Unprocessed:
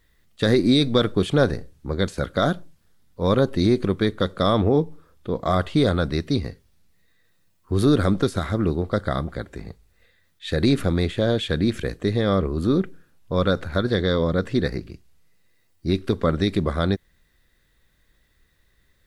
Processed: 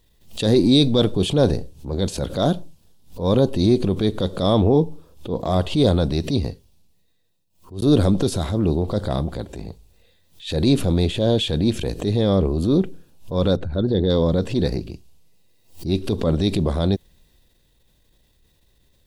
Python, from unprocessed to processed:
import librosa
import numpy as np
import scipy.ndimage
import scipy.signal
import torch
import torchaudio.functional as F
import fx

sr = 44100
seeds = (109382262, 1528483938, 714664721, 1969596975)

y = fx.envelope_sharpen(x, sr, power=1.5, at=(13.56, 14.1))
y = fx.edit(y, sr, fx.fade_out_span(start_s=6.35, length_s=1.47), tone=tone)
y = fx.transient(y, sr, attack_db=-7, sustain_db=3)
y = fx.band_shelf(y, sr, hz=1600.0, db=-11.5, octaves=1.1)
y = fx.pre_swell(y, sr, db_per_s=150.0)
y = F.gain(torch.from_numpy(y), 3.5).numpy()